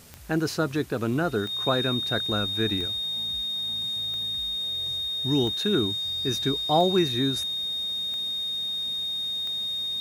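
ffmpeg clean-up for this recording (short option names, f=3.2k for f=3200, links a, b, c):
-af "adeclick=t=4,bandreject=f=3.7k:w=30,afwtdn=0.0028"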